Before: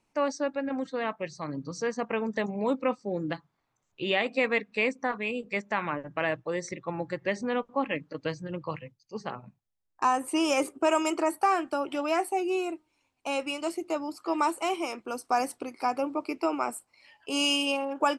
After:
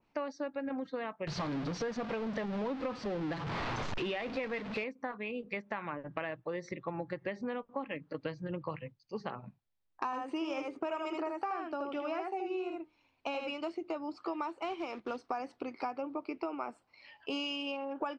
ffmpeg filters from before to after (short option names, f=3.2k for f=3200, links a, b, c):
-filter_complex "[0:a]asettb=1/sr,asplit=3[a][b][c];[a]atrim=end=1.274[d];[b]atrim=start=1.27:end=4.84,asetpts=PTS-STARTPTS,afade=t=in:d=0.004:c=qsin,afade=t=out:st=3.566:d=0.004:c=qsin,aeval=exprs='val(0)+0.5*0.0473*sgn(val(0))':c=same[e];[c]atrim=start=4.836[f];[d][e]acrossfade=d=0.004:c1=hsin:c2=qsin[g];[g][f]acrossfade=d=0.004:c1=qsin:c2=hsin,asettb=1/sr,asplit=3[h][i][j];[h]atrim=end=10.054[k];[i]atrim=start=10.05:end=13.54,asetpts=PTS-STARTPTS,afade=t=in:d=0.004:c=qsin,afade=t=out:st=3.486:d=0.004:c=qsin,aecho=1:1:78:0.631,atrim=end_sample=153909[l];[j]atrim=start=13.536[m];[k][l]acrossfade=d=0.004:c1=hsin:c2=qsin[n];[n][m]acrossfade=d=0.004:c1=qsin:c2=hsin,asettb=1/sr,asplit=3[o][p][q];[o]atrim=end=14.644[r];[p]atrim=start=14.64:end=15.25,asetpts=PTS-STARTPTS,afade=t=in:d=0.004:c=qsin,afade=t=out:st=0.606:d=0.004:c=qsin,acrusher=bits=3:mode=log:mix=0:aa=0.000001[s];[q]atrim=start=15.246[t];[r][s]acrossfade=d=0.004:c1=hsin:c2=qsin[u];[u][t]acrossfade=d=0.004:c1=qsin:c2=hsin,lowpass=f=4.7k:w=0.5412,lowpass=f=4.7k:w=1.3066,acompressor=threshold=-35dB:ratio=6,adynamicequalizer=threshold=0.002:dfrequency=2300:dqfactor=0.7:tfrequency=2300:tqfactor=0.7:attack=5:release=100:ratio=0.375:range=2:mode=cutabove:tftype=highshelf,volume=1dB"